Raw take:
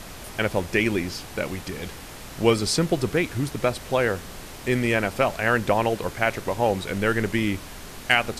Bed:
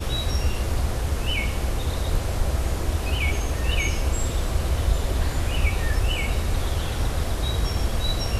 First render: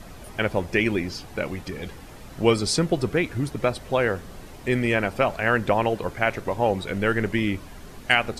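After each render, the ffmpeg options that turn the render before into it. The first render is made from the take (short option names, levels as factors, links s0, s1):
-af "afftdn=nr=9:nf=-40"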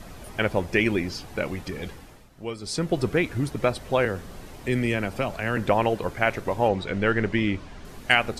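-filter_complex "[0:a]asettb=1/sr,asplit=3[s0][s1][s2];[s0]atrim=end=4.054[s3];[s1]atrim=start=4.05:end=5.57,asetpts=PTS-STARTPTS,afade=t=in:d=0.004:c=qsin,afade=t=out:st=1.516:d=0.004:c=qsin,acrossover=split=340|3000[s4][s5][s6];[s5]acompressor=threshold=0.0282:ratio=2:attack=3.2:release=140:knee=2.83:detection=peak[s7];[s4][s7][s6]amix=inputs=3:normalize=0[s8];[s2]atrim=start=5.566[s9];[s3][s8]acrossfade=d=0.004:c1=hsin:c2=qsin[s10];[s10][s9]acrossfade=d=0.004:c1=qsin:c2=hsin,asettb=1/sr,asplit=3[s11][s12][s13];[s11]atrim=end=6.684[s14];[s12]atrim=start=6.68:end=7.85,asetpts=PTS-STARTPTS,afade=t=in:d=0.004:c=qsin,afade=t=out:st=1.166:d=0.004:c=qsin,lowpass=5800[s15];[s13]atrim=start=7.846[s16];[s14][s15]acrossfade=d=0.004:c1=hsin:c2=qsin[s17];[s17][s16]acrossfade=d=0.004:c1=qsin:c2=hsin,asplit=3[s18][s19][s20];[s18]atrim=end=2.3,asetpts=PTS-STARTPTS,afade=t=out:st=1.87:d=0.43:silence=0.199526[s21];[s19]atrim=start=2.3:end=2.59,asetpts=PTS-STARTPTS,volume=0.2[s22];[s20]atrim=start=2.59,asetpts=PTS-STARTPTS,afade=t=in:d=0.43:silence=0.199526[s23];[s21][s22][s23]concat=n=3:v=0:a=1"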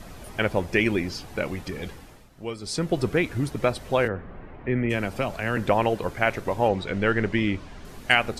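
-filter_complex "[0:a]asplit=3[s0][s1][s2];[s0]afade=t=out:st=4.07:d=0.02[s3];[s1]lowpass=f=2200:w=0.5412,lowpass=f=2200:w=1.3066,afade=t=in:st=4.07:d=0.02,afade=t=out:st=4.89:d=0.02[s4];[s2]afade=t=in:st=4.89:d=0.02[s5];[s3][s4][s5]amix=inputs=3:normalize=0"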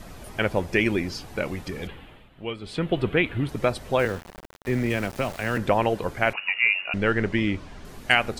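-filter_complex "[0:a]asettb=1/sr,asplit=3[s0][s1][s2];[s0]atrim=end=1.874[s3];[s1]atrim=start=1.87:end=3.49,asetpts=PTS-STARTPTS,afade=t=in:d=0.004:c=qsin,afade=t=out:st=1.616:d=0.004:c=qsin,highshelf=f=4200:t=q:w=3:g=-10.5[s4];[s2]atrim=start=3.486[s5];[s3][s4]acrossfade=d=0.004:c1=hsin:c2=qsin[s6];[s6][s5]acrossfade=d=0.004:c1=qsin:c2=hsin,asettb=1/sr,asplit=3[s7][s8][s9];[s7]atrim=end=3.994[s10];[s8]atrim=start=3.99:end=5.58,asetpts=PTS-STARTPTS,afade=t=in:d=0.004:c=qsin,afade=t=out:st=1.586:d=0.004:c=qsin,aeval=exprs='val(0)*gte(abs(val(0)),0.0178)':c=same[s11];[s9]atrim=start=5.576[s12];[s10][s11]acrossfade=d=0.004:c1=hsin:c2=qsin[s13];[s13][s12]acrossfade=d=0.004:c1=qsin:c2=hsin,asettb=1/sr,asplit=3[s14][s15][s16];[s14]atrim=end=6.334[s17];[s15]atrim=start=6.33:end=6.94,asetpts=PTS-STARTPTS,afade=t=in:d=0.004:c=qsin,afade=t=out:st=0.606:d=0.004:c=qsin,lowpass=f=2500:t=q:w=0.5098,lowpass=f=2500:t=q:w=0.6013,lowpass=f=2500:t=q:w=0.9,lowpass=f=2500:t=q:w=2.563,afreqshift=-2900[s18];[s16]atrim=start=6.936[s19];[s17][s18]acrossfade=d=0.004:c1=hsin:c2=qsin[s20];[s20][s19]acrossfade=d=0.004:c1=qsin:c2=hsin"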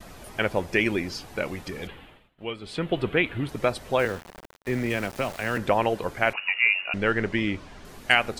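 -af "agate=range=0.0224:threshold=0.00631:ratio=3:detection=peak,lowshelf=f=250:g=-5"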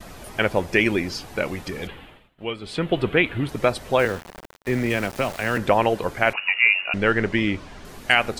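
-af "volume=1.58,alimiter=limit=0.708:level=0:latency=1"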